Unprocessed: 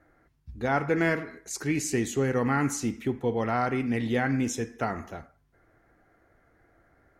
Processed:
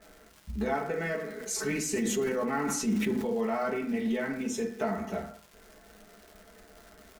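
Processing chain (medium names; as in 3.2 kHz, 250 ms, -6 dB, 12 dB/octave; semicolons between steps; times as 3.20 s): peaking EQ 430 Hz +3 dB 1 oct; comb 4.6 ms, depth 96%; compression 4:1, threshold -34 dBFS, peak gain reduction 15.5 dB; crackle 280 per s -44 dBFS; reverberation RT60 0.50 s, pre-delay 5 ms, DRR 0.5 dB; 1.29–3.33 s: decay stretcher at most 27 dB/s; trim +1.5 dB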